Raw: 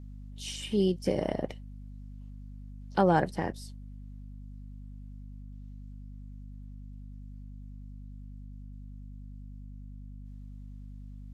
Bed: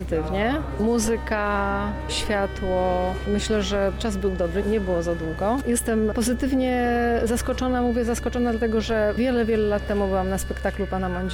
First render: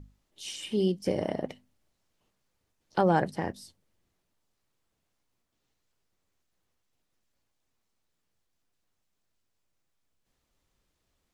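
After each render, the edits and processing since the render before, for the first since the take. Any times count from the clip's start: hum notches 50/100/150/200/250 Hz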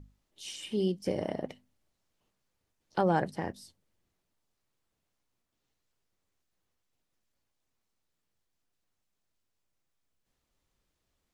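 trim -3 dB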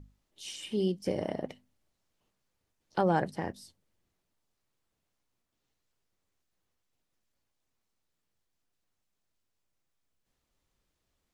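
no audible change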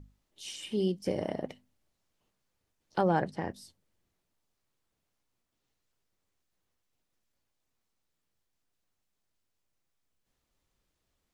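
3.07–3.51 s: distance through air 53 m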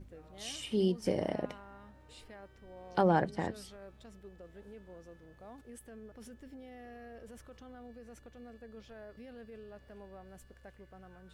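add bed -28.5 dB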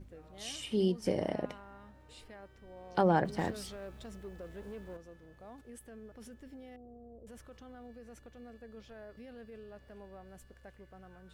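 3.25–4.97 s: companding laws mixed up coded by mu; 6.76–7.27 s: Gaussian low-pass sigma 13 samples

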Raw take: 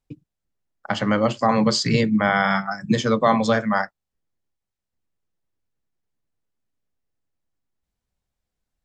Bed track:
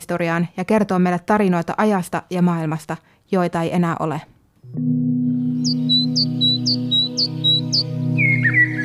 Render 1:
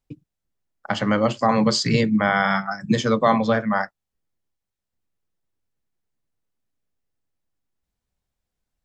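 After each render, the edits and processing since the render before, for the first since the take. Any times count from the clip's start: 2.24–2.80 s: Chebyshev low-pass 6.6 kHz, order 8; 3.38–3.81 s: distance through air 180 m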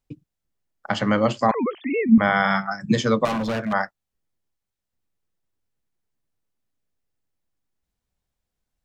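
1.51–2.18 s: formants replaced by sine waves; 3.25–3.73 s: hard clipper -22.5 dBFS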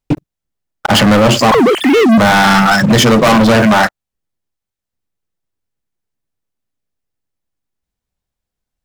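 in parallel at -1.5 dB: compressor with a negative ratio -31 dBFS, ratio -1; on the sum: waveshaping leveller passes 5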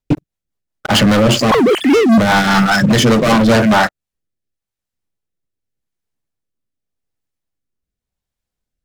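rotary cabinet horn 5 Hz, later 0.85 Hz, at 3.50 s; overload inside the chain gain 6.5 dB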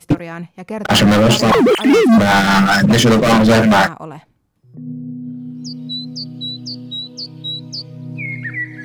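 add bed track -9 dB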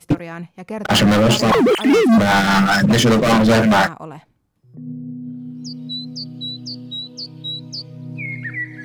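trim -2.5 dB

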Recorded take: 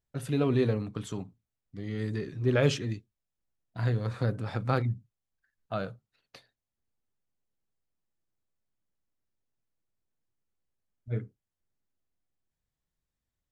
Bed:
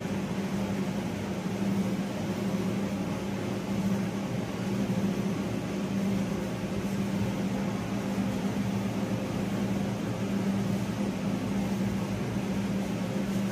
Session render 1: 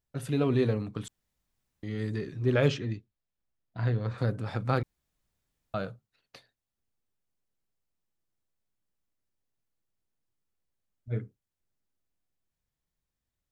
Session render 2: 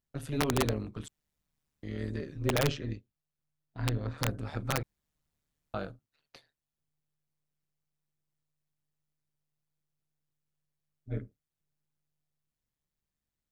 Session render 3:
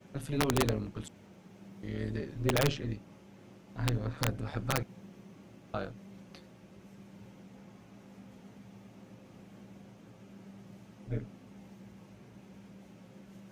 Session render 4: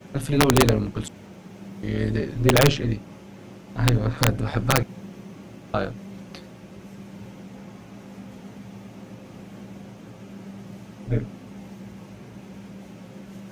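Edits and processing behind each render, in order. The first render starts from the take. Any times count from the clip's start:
1.08–1.83 s: room tone; 2.68–4.18 s: distance through air 110 m; 4.83–5.74 s: room tone
AM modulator 150 Hz, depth 60%; integer overflow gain 18 dB
add bed -22.5 dB
trim +11.5 dB

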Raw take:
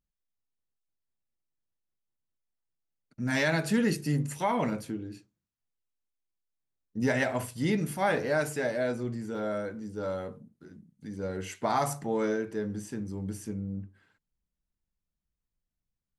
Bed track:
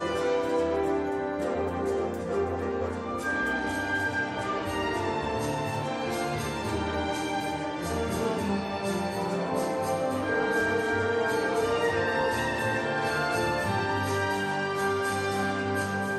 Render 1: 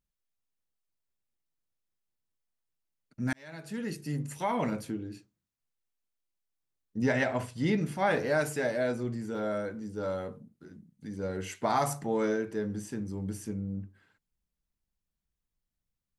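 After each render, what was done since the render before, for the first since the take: 3.33–4.85 s: fade in; 7.02–8.11 s: distance through air 62 m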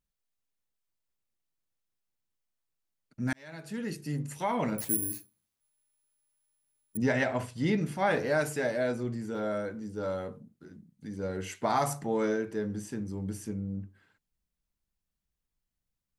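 4.78–6.97 s: careless resampling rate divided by 4×, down none, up zero stuff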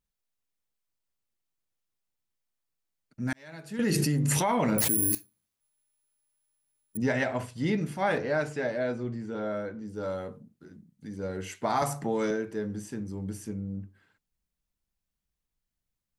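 3.79–5.15 s: level flattener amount 100%; 8.18–9.88 s: distance through air 95 m; 11.82–12.31 s: three bands compressed up and down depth 70%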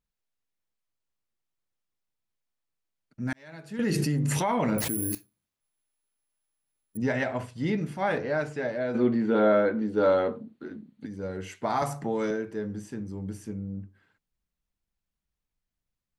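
8.95–11.06 s: time-frequency box 210–4600 Hz +12 dB; treble shelf 5.8 kHz -7.5 dB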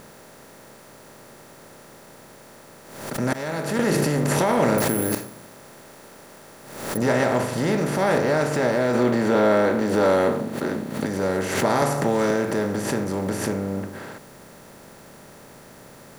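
spectral levelling over time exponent 0.4; swell ahead of each attack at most 62 dB/s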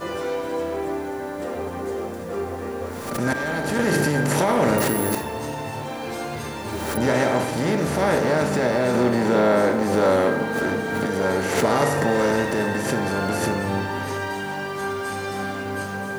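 add bed track 0 dB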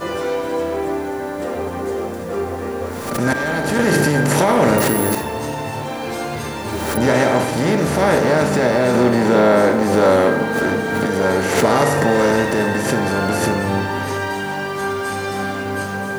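trim +5 dB; peak limiter -3 dBFS, peak gain reduction 1.5 dB

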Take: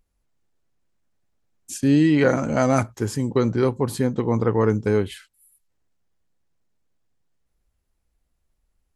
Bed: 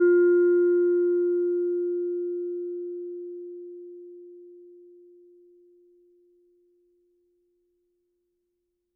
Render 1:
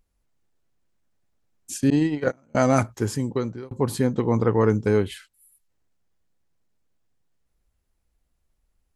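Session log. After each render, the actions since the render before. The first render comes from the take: 1.90–2.55 s: gate -16 dBFS, range -34 dB; 3.10–3.71 s: fade out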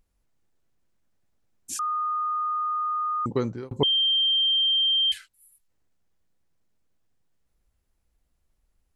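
1.79–3.26 s: bleep 1.23 kHz -24 dBFS; 3.83–5.12 s: bleep 3.16 kHz -19 dBFS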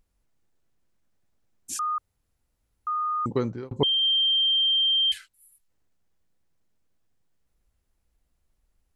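1.98–2.87 s: room tone; 3.38–4.03 s: distance through air 55 m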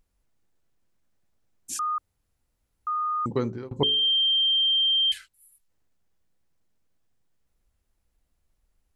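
de-hum 54.03 Hz, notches 8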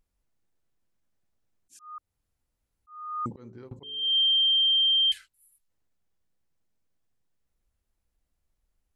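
slow attack 378 ms; upward expansion 1.5:1, over -32 dBFS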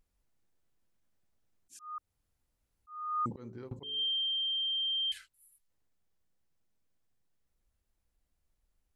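peak limiter -27.5 dBFS, peak gain reduction 8.5 dB; gain riding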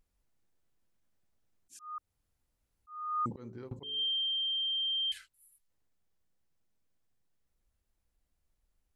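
no audible change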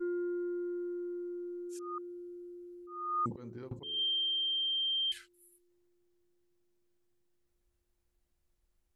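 add bed -16.5 dB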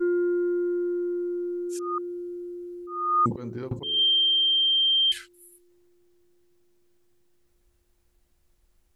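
trim +11 dB

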